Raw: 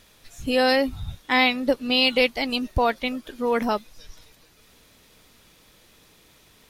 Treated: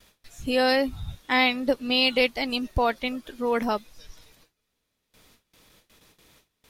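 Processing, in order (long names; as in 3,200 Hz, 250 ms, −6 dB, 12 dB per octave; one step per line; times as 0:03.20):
noise gate with hold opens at −44 dBFS
level −2 dB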